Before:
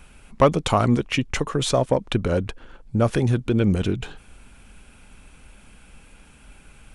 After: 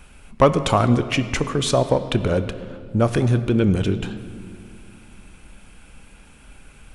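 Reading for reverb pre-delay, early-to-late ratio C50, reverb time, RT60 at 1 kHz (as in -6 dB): 26 ms, 12.0 dB, 2.1 s, 1.8 s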